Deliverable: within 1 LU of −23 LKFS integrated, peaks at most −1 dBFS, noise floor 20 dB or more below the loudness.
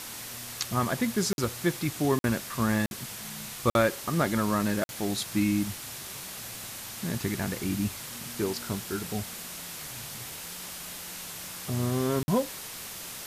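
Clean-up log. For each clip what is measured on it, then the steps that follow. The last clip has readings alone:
number of dropouts 6; longest dropout 51 ms; background noise floor −41 dBFS; target noise floor −51 dBFS; integrated loudness −30.5 LKFS; sample peak −8.5 dBFS; target loudness −23.0 LKFS
→ repair the gap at 0:01.33/0:02.19/0:02.86/0:03.70/0:04.84/0:12.23, 51 ms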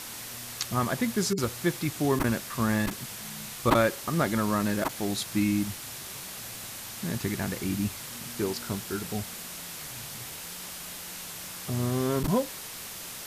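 number of dropouts 0; background noise floor −40 dBFS; target noise floor −50 dBFS
→ broadband denoise 10 dB, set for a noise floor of −40 dBFS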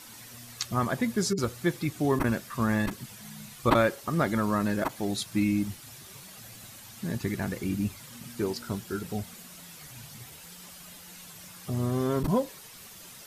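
background noise floor −48 dBFS; target noise floor −50 dBFS
→ broadband denoise 6 dB, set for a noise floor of −48 dBFS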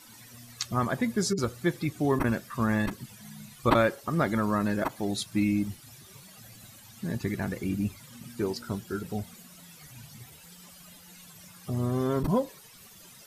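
background noise floor −52 dBFS; integrated loudness −29.5 LKFS; sample peak −8.0 dBFS; target loudness −23.0 LKFS
→ level +6.5 dB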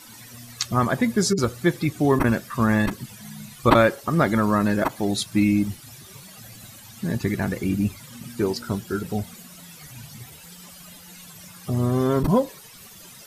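integrated loudness −23.0 LKFS; sample peak −1.5 dBFS; background noise floor −45 dBFS

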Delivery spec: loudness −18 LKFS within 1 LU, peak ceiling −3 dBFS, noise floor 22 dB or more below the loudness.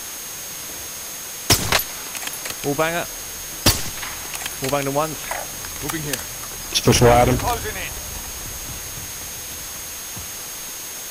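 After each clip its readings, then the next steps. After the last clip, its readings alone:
interfering tone 6,500 Hz; level of the tone −35 dBFS; background noise floor −32 dBFS; target noise floor −45 dBFS; integrated loudness −22.5 LKFS; sample peak −4.5 dBFS; target loudness −18.0 LKFS
→ notch filter 6,500 Hz, Q 30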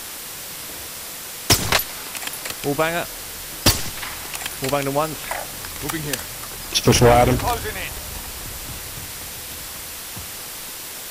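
interfering tone none found; background noise floor −34 dBFS; target noise floor −45 dBFS
→ broadband denoise 11 dB, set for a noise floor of −34 dBFS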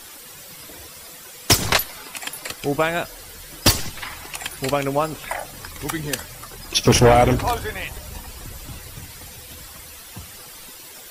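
background noise floor −41 dBFS; target noise floor −43 dBFS
→ broadband denoise 6 dB, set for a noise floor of −41 dBFS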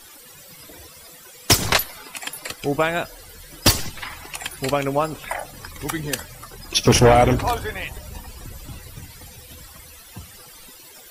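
background noise floor −45 dBFS; integrated loudness −21.0 LKFS; sample peak −4.5 dBFS; target loudness −18.0 LKFS
→ level +3 dB
brickwall limiter −3 dBFS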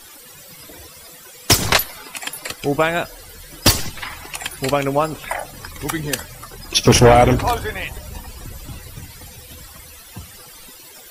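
integrated loudness −18.5 LKFS; sample peak −3.0 dBFS; background noise floor −42 dBFS

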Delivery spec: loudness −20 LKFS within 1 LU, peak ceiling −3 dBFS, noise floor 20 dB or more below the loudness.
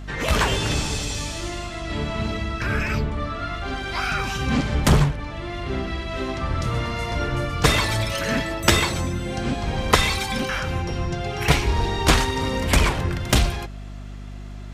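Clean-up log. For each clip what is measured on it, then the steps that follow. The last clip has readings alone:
mains hum 50 Hz; hum harmonics up to 250 Hz; level of the hum −33 dBFS; integrated loudness −23.0 LKFS; sample peak −3.0 dBFS; target loudness −20.0 LKFS
→ mains-hum notches 50/100/150/200/250 Hz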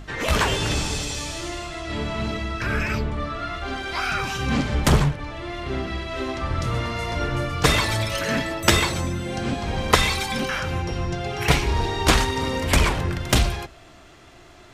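mains hum none found; integrated loudness −23.5 LKFS; sample peak −2.5 dBFS; target loudness −20.0 LKFS
→ level +3.5 dB
brickwall limiter −3 dBFS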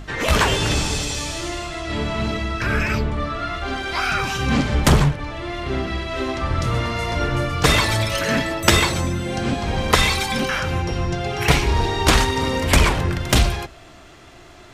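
integrated loudness −20.5 LKFS; sample peak −3.0 dBFS; background noise floor −44 dBFS

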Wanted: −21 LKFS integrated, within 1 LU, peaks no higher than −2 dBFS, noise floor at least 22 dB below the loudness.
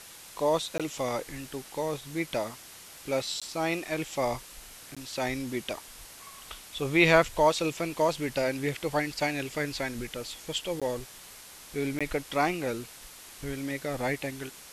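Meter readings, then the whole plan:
number of dropouts 5; longest dropout 16 ms; background noise floor −49 dBFS; target noise floor −52 dBFS; integrated loudness −30.0 LKFS; sample peak −7.0 dBFS; target loudness −21.0 LKFS
→ repair the gap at 0:00.78/0:03.40/0:04.95/0:10.80/0:11.99, 16 ms
noise reduction from a noise print 6 dB
level +9 dB
brickwall limiter −2 dBFS

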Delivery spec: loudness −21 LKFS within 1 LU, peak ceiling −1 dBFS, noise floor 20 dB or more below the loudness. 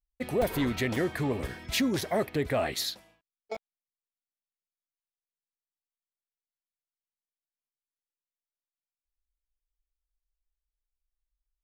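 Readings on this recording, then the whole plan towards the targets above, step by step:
number of dropouts 6; longest dropout 3.4 ms; integrated loudness −30.0 LKFS; sample peak −16.0 dBFS; target loudness −21.0 LKFS
→ repair the gap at 0:00.42/0:00.96/0:01.48/0:02.01/0:02.76/0:03.55, 3.4 ms
level +9 dB

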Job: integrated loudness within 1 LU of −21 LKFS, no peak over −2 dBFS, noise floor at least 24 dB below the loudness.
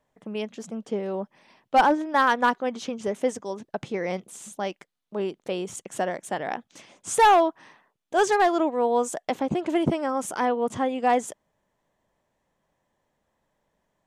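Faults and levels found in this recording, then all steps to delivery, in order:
integrated loudness −25.0 LKFS; sample peak −11.5 dBFS; target loudness −21.0 LKFS
→ level +4 dB

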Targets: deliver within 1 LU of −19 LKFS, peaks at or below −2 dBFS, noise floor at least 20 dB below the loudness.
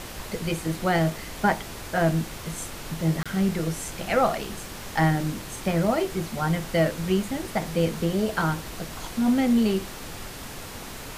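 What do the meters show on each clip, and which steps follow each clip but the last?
number of dropouts 1; longest dropout 26 ms; background noise floor −38 dBFS; target noise floor −46 dBFS; integrated loudness −26.0 LKFS; sample peak −9.5 dBFS; target loudness −19.0 LKFS
→ repair the gap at 0:03.23, 26 ms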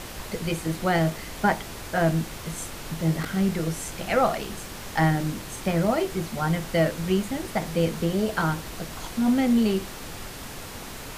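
number of dropouts 0; background noise floor −38 dBFS; target noise floor −46 dBFS
→ noise reduction from a noise print 8 dB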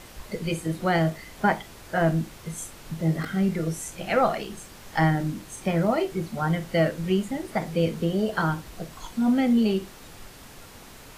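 background noise floor −46 dBFS; integrated loudness −26.0 LKFS; sample peak −9.5 dBFS; target loudness −19.0 LKFS
→ level +7 dB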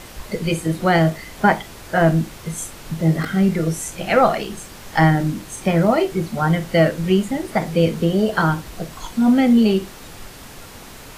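integrated loudness −19.0 LKFS; sample peak −2.5 dBFS; background noise floor −39 dBFS

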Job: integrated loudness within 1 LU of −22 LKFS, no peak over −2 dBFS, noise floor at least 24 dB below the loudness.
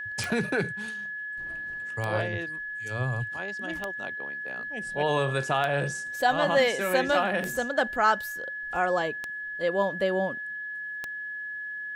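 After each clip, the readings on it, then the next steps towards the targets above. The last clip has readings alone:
number of clicks 7; interfering tone 1,700 Hz; level of the tone −33 dBFS; integrated loudness −28.5 LKFS; sample peak −10.0 dBFS; target loudness −22.0 LKFS
→ click removal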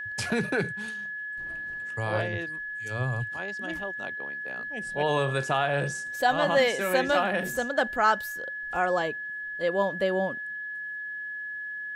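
number of clicks 0; interfering tone 1,700 Hz; level of the tone −33 dBFS
→ notch filter 1,700 Hz, Q 30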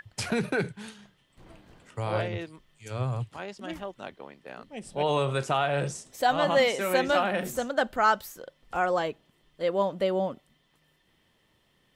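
interfering tone none found; integrated loudness −28.0 LKFS; sample peak −11.0 dBFS; target loudness −22.0 LKFS
→ level +6 dB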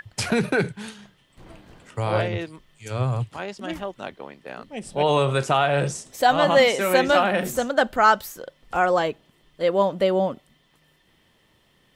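integrated loudness −22.0 LKFS; sample peak −5.0 dBFS; background noise floor −62 dBFS

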